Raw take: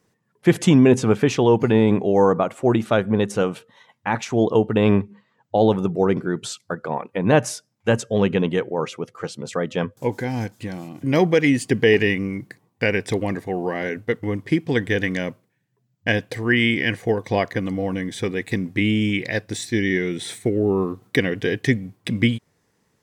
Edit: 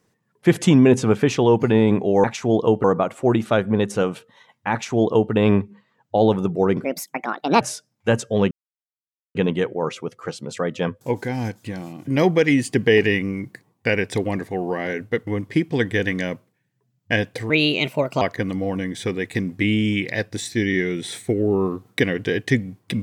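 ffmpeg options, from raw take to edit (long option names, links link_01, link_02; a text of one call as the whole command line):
ffmpeg -i in.wav -filter_complex "[0:a]asplit=8[link_01][link_02][link_03][link_04][link_05][link_06][link_07][link_08];[link_01]atrim=end=2.242[link_09];[link_02]atrim=start=4.118:end=4.722[link_10];[link_03]atrim=start=2.238:end=6.244[link_11];[link_04]atrim=start=6.24:end=7.41,asetpts=PTS-STARTPTS,asetrate=67032,aresample=44100,atrim=end_sample=33945,asetpts=PTS-STARTPTS[link_12];[link_05]atrim=start=7.406:end=8.31,asetpts=PTS-STARTPTS,afade=type=out:start_time=0.9:duration=0.004:curve=hsin,apad=pad_dur=0.84[link_13];[link_06]atrim=start=8.31:end=16.464,asetpts=PTS-STARTPTS,afade=type=in:duration=0.004:curve=hsin[link_14];[link_07]atrim=start=16.46:end=17.38,asetpts=PTS-STARTPTS,asetrate=56889,aresample=44100,atrim=end_sample=31451,asetpts=PTS-STARTPTS[link_15];[link_08]atrim=start=17.376[link_16];[link_09][link_10]acrossfade=duration=0.004:curve1=hsin:curve2=hsin[link_17];[link_17][link_11]acrossfade=duration=0.004:curve1=hsin:curve2=hsin[link_18];[link_18][link_12]acrossfade=duration=0.004:curve1=hsin:curve2=hsin[link_19];[link_13][link_14]concat=n=2:v=0:a=1[link_20];[link_19][link_20]acrossfade=duration=0.004:curve1=hsin:curve2=hsin[link_21];[link_21][link_15]acrossfade=duration=0.004:curve1=hsin:curve2=hsin[link_22];[link_22][link_16]acrossfade=duration=0.004:curve1=hsin:curve2=hsin" out.wav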